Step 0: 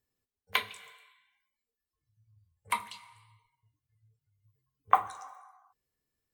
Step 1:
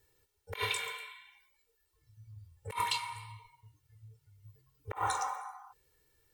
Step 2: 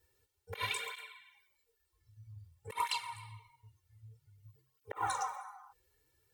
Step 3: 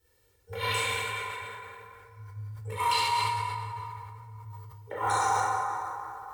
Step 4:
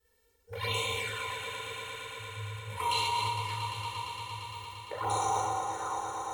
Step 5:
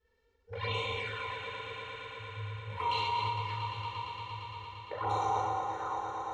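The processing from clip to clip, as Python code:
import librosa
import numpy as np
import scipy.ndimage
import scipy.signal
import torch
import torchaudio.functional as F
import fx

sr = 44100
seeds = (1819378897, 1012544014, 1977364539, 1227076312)

y1 = x + 0.91 * np.pad(x, (int(2.2 * sr / 1000.0), 0))[:len(x)]
y1 = fx.over_compress(y1, sr, threshold_db=-40.0, ratio=-1.0)
y1 = F.gain(torch.from_numpy(y1), 3.5).numpy()
y2 = fx.flanger_cancel(y1, sr, hz=0.52, depth_ms=7.3)
y3 = fx.rev_plate(y2, sr, seeds[0], rt60_s=3.0, hf_ratio=0.5, predelay_ms=0, drr_db=-9.5)
y3 = fx.sustainer(y3, sr, db_per_s=21.0)
y4 = fx.env_flanger(y3, sr, rest_ms=4.6, full_db=-26.5)
y4 = fx.echo_swell(y4, sr, ms=115, loudest=5, wet_db=-13.0)
y5 = fx.air_absorb(y4, sr, metres=200.0)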